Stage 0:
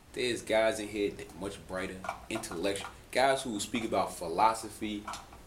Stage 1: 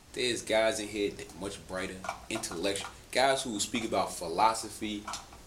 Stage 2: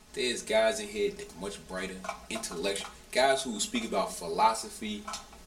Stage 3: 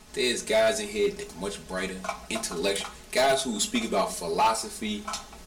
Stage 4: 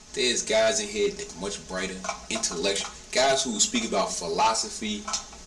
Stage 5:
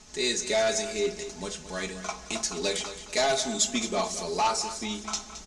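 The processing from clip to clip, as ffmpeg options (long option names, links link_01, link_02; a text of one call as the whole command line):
ffmpeg -i in.wav -af "equalizer=frequency=5900:width_type=o:width=1.4:gain=7" out.wav
ffmpeg -i in.wav -af "aecho=1:1:4.7:0.81,volume=-2dB" out.wav
ffmpeg -i in.wav -af "volume=23dB,asoftclip=hard,volume=-23dB,volume=5dB" out.wav
ffmpeg -i in.wav -af "lowpass=frequency=6500:width_type=q:width=3.1" out.wav
ffmpeg -i in.wav -af "aecho=1:1:218|436|654|872:0.237|0.0854|0.0307|0.0111,volume=-3dB" out.wav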